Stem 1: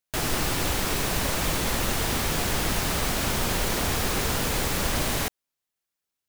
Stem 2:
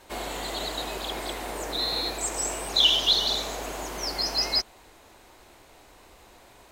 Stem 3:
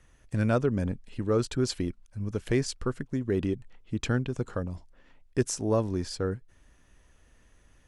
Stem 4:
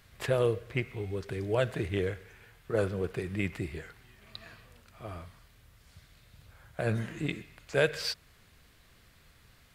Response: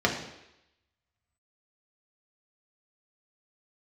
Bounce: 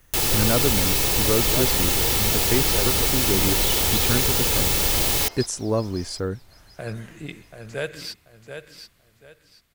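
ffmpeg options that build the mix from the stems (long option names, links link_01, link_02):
-filter_complex "[0:a]equalizer=frequency=1500:width_type=o:width=0.88:gain=-5.5,aecho=1:1:2.3:0.37,crystalizer=i=3:c=0,volume=0.5dB[link_01];[1:a]adelay=850,volume=-12dB,asplit=2[link_02][link_03];[link_03]volume=-7.5dB[link_04];[2:a]volume=2.5dB[link_05];[3:a]dynaudnorm=framelen=350:gausssize=5:maxgain=8.5dB,volume=-10.5dB,asplit=2[link_06][link_07];[link_07]volume=-8.5dB[link_08];[link_04][link_08]amix=inputs=2:normalize=0,aecho=0:1:735|1470|2205|2940:1|0.26|0.0676|0.0176[link_09];[link_01][link_02][link_05][link_06][link_09]amix=inputs=5:normalize=0,acrossover=split=4800[link_10][link_11];[link_11]acompressor=threshold=-28dB:ratio=4:attack=1:release=60[link_12];[link_10][link_12]amix=inputs=2:normalize=0,highshelf=frequency=7200:gain=7"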